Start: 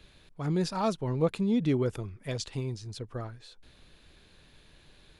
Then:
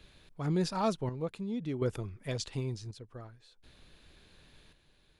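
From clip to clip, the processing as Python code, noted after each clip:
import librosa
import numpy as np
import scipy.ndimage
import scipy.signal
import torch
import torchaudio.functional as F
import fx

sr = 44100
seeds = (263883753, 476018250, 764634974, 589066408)

y = fx.chopper(x, sr, hz=0.55, depth_pct=60, duty_pct=60)
y = F.gain(torch.from_numpy(y), -1.5).numpy()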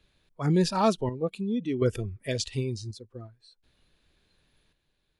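y = fx.noise_reduce_blind(x, sr, reduce_db=16)
y = F.gain(torch.from_numpy(y), 7.0).numpy()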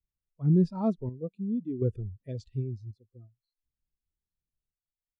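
y = fx.low_shelf(x, sr, hz=480.0, db=11.0)
y = fx.spectral_expand(y, sr, expansion=1.5)
y = F.gain(torch.from_numpy(y), -8.5).numpy()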